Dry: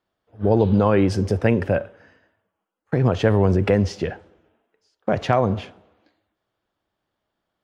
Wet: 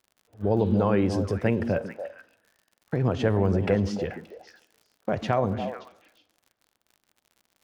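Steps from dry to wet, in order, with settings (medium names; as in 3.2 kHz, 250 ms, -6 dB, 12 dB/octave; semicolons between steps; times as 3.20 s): crackle 66 per s -39 dBFS; on a send: repeats whose band climbs or falls 144 ms, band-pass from 240 Hz, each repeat 1.4 oct, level -4 dB; on the sum: trim -6 dB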